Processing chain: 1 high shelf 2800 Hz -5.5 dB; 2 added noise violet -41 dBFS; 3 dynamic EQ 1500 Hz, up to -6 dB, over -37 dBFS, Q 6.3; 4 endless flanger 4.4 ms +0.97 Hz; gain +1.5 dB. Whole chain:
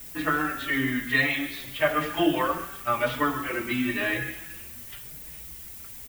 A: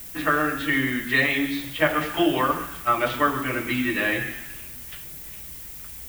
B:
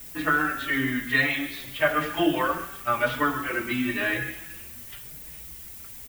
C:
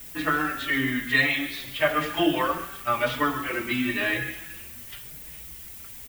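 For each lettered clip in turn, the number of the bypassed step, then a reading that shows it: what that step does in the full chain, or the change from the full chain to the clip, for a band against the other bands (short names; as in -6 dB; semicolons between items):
4, loudness change +3.0 LU; 3, 2 kHz band +2.0 dB; 1, 4 kHz band +3.0 dB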